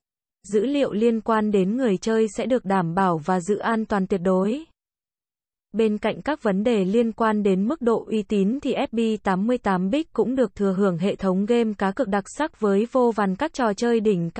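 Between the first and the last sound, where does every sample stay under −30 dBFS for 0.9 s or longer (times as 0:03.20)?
0:04.60–0:05.74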